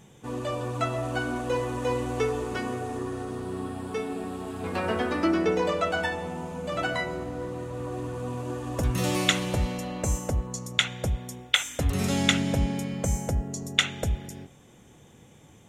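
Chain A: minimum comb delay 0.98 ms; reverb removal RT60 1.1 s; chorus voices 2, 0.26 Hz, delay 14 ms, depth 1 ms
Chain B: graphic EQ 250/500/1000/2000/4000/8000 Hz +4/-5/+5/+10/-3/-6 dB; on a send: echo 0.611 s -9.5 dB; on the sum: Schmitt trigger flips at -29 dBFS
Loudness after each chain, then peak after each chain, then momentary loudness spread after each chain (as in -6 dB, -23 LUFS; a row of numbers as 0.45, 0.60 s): -34.0, -27.0 LUFS; -8.5, -20.0 dBFS; 13, 3 LU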